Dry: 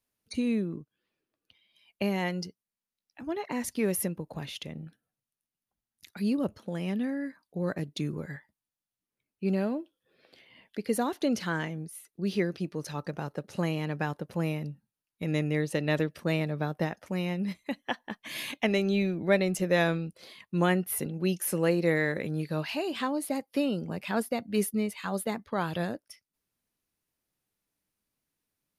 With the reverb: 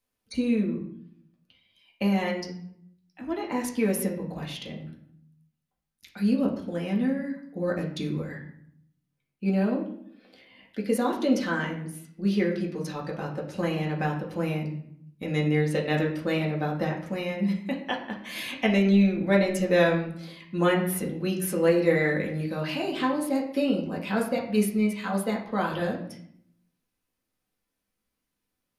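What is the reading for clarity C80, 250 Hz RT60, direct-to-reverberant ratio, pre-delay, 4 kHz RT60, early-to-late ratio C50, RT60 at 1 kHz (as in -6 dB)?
10.5 dB, 0.95 s, -2.0 dB, 4 ms, 0.50 s, 7.5 dB, 0.65 s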